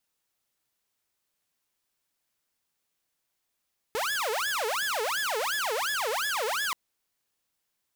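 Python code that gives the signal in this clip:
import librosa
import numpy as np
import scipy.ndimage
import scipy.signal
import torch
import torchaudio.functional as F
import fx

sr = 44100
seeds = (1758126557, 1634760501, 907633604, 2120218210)

y = fx.siren(sr, length_s=2.78, kind='wail', low_hz=425.0, high_hz=1720.0, per_s=2.8, wave='saw', level_db=-24.5)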